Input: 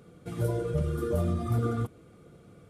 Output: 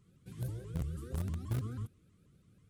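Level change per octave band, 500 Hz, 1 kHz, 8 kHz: -19.5, -16.0, -6.0 dB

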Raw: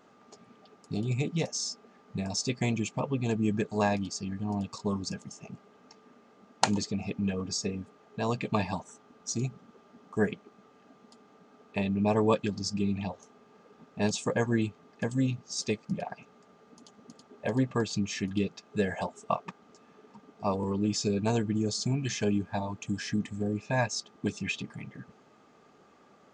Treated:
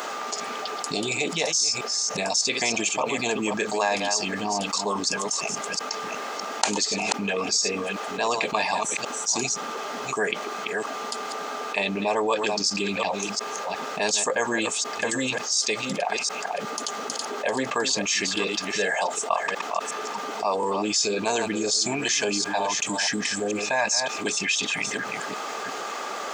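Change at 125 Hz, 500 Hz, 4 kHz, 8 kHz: -8.5, +6.0, +13.0, +14.0 dB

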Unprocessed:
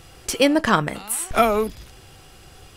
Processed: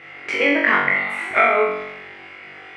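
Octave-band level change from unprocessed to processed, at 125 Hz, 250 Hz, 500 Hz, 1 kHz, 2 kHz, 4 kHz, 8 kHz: -11.5 dB, -4.0 dB, +0.5 dB, +1.5 dB, +10.5 dB, -4.0 dB, under -15 dB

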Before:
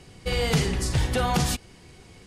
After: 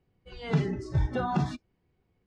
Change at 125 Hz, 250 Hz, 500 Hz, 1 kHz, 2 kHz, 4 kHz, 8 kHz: -3.0 dB, -2.5 dB, -6.5 dB, -4.5 dB, -10.0 dB, -16.5 dB, under -20 dB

